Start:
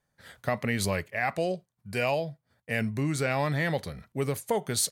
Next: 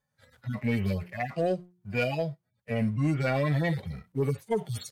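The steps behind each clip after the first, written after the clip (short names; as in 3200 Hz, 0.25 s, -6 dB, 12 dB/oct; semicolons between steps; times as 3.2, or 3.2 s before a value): median-filter separation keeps harmonic; de-hum 178.2 Hz, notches 2; sample leveller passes 1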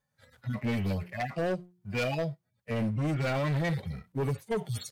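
overloaded stage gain 26 dB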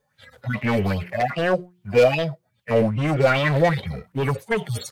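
LFO bell 2.5 Hz 440–3300 Hz +15 dB; gain +6.5 dB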